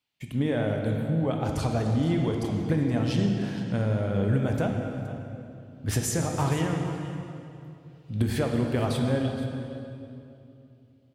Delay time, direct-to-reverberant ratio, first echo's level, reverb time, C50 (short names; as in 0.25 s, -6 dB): 0.471 s, 1.5 dB, -15.5 dB, 2.7 s, 3.0 dB